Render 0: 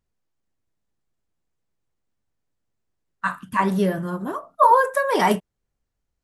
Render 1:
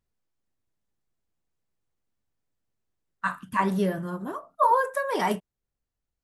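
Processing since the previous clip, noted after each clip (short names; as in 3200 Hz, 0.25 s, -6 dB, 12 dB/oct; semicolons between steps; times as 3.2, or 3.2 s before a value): vocal rider within 3 dB 2 s; gain -6 dB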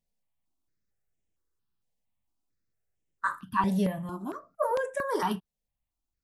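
step phaser 4.4 Hz 340–4400 Hz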